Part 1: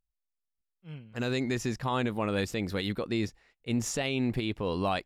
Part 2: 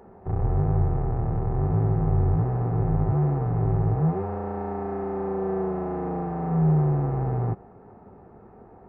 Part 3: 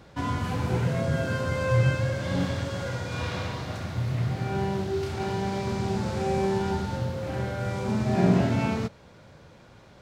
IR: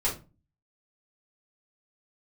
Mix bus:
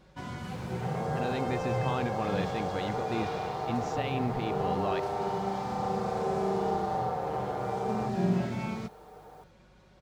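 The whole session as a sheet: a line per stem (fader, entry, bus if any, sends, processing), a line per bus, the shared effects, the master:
−4.0 dB, 0.00 s, no send, no echo send, Gaussian smoothing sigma 1.8 samples
−1.0 dB, 0.55 s, no send, echo send −14 dB, high-pass filter 420 Hz 24 dB per octave; comb filter 6.6 ms, depth 77%; bit reduction 11 bits
−9.0 dB, 0.00 s, no send, no echo send, comb filter 5.4 ms, depth 53%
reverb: not used
echo: single-tap delay 72 ms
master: mains hum 50 Hz, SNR 32 dB

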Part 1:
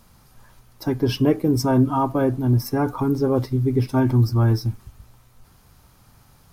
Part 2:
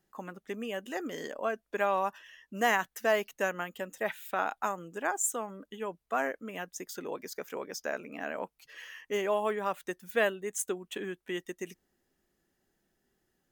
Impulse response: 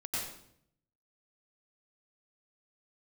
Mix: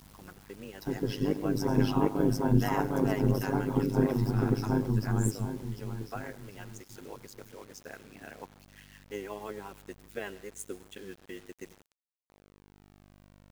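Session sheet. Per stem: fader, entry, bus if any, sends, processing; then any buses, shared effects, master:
+1.5 dB, 0.00 s, send −21 dB, echo send −7.5 dB, automatic ducking −10 dB, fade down 0.95 s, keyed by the second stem
−2.5 dB, 0.00 s, send −20 dB, no echo send, rotating-speaker cabinet horn 6 Hz; mains hum 50 Hz, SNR 13 dB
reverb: on, RT60 0.70 s, pre-delay 87 ms
echo: repeating echo 749 ms, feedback 32%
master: notch comb filter 600 Hz; amplitude modulation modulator 100 Hz, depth 75%; bit reduction 9 bits

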